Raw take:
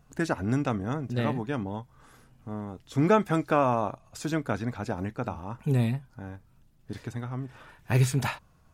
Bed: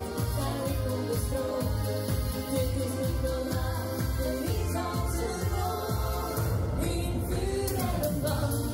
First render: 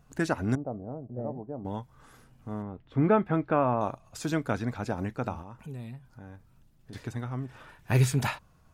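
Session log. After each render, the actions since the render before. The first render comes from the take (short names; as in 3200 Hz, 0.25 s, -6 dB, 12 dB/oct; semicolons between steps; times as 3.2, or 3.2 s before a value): 0.55–1.65 ladder low-pass 760 Hz, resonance 50%; 2.62–3.81 air absorption 490 m; 5.42–6.93 compressor 2.5:1, threshold -45 dBFS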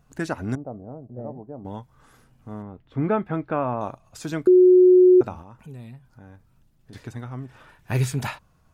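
4.47–5.21 bleep 365 Hz -9.5 dBFS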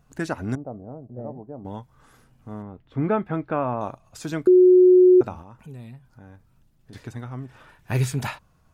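nothing audible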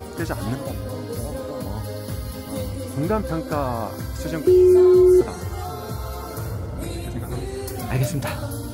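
add bed -0.5 dB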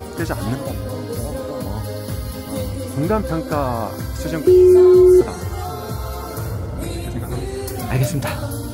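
gain +3.5 dB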